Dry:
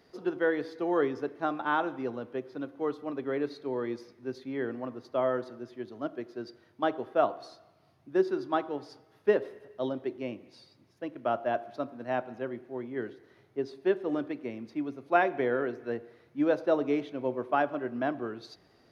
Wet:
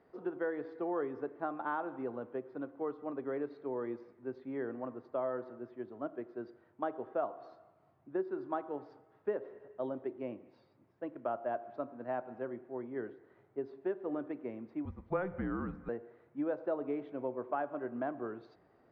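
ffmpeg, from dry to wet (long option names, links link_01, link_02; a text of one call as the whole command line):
ffmpeg -i in.wav -filter_complex "[0:a]asettb=1/sr,asplit=3[link_01][link_02][link_03];[link_01]atrim=end=14.854[link_04];[link_02]atrim=start=14.85:end=15.89,asetpts=PTS-STARTPTS,afade=type=in:duration=0.004:curve=qsin,afade=type=out:start_time=1.036:duration=0.004:curve=qsin,afreqshift=-190[link_05];[link_03]atrim=start=15.886[link_06];[link_04][link_05]acrossfade=duration=0.004:curve1=hsin:curve2=qsin[link_07];[link_07][link_06]acrossfade=duration=0.004:curve1=qsin:curve2=hsin,lowpass=1300,lowshelf=frequency=370:gain=-6.5,acompressor=threshold=-34dB:ratio=2.5" out.wav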